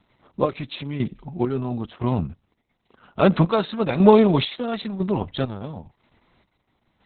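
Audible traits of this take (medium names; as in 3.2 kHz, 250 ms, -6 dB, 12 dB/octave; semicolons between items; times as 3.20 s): chopped level 1 Hz, depth 60%, duty 45%; Opus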